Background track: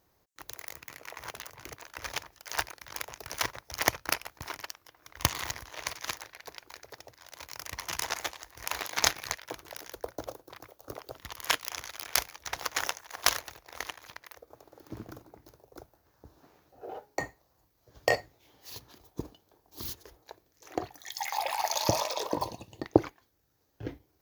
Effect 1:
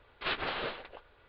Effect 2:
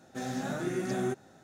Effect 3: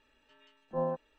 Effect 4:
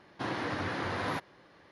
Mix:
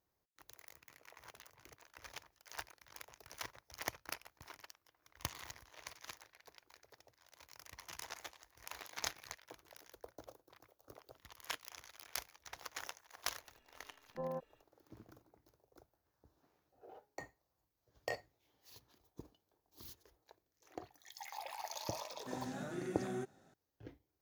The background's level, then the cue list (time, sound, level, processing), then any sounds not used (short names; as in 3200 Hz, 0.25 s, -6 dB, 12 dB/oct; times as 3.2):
background track -15 dB
13.44 add 3 -4.5 dB + limiter -28.5 dBFS
22.11 add 2 -10 dB
not used: 1, 4